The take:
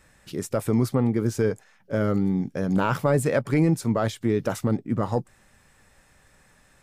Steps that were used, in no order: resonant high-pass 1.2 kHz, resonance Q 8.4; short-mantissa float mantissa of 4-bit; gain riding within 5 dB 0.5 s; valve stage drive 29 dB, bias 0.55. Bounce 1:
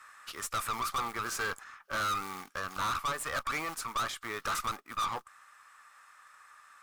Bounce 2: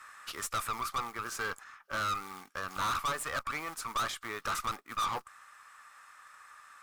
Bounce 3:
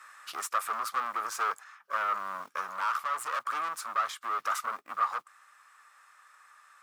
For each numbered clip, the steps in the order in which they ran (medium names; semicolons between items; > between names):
short-mantissa float > resonant high-pass > gain riding > valve stage; gain riding > short-mantissa float > resonant high-pass > valve stage; valve stage > short-mantissa float > resonant high-pass > gain riding